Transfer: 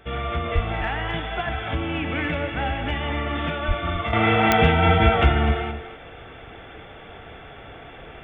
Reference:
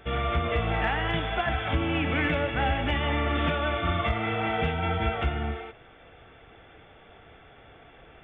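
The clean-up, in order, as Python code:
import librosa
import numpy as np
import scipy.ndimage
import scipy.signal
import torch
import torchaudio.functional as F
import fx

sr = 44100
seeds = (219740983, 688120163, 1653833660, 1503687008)

y = fx.fix_declick_ar(x, sr, threshold=10.0)
y = fx.highpass(y, sr, hz=140.0, slope=24, at=(0.54, 0.66), fade=0.02)
y = fx.highpass(y, sr, hz=140.0, slope=24, at=(3.67, 3.79), fade=0.02)
y = fx.fix_echo_inverse(y, sr, delay_ms=250, level_db=-11.5)
y = fx.fix_level(y, sr, at_s=4.13, step_db=-10.0)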